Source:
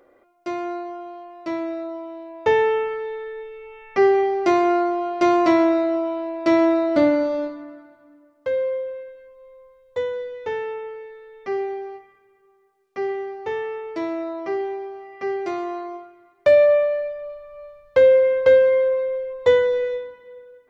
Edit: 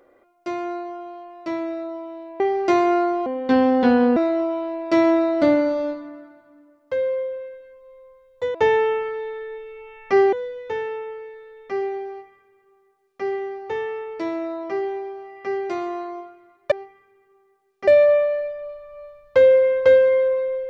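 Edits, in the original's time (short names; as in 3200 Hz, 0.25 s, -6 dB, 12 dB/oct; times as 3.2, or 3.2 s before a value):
2.4–4.18 move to 10.09
5.04–5.71 speed 74%
11.85–13.01 copy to 16.48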